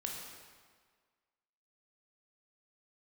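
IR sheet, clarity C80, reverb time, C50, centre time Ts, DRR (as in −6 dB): 3.5 dB, 1.7 s, 1.5 dB, 75 ms, −1.0 dB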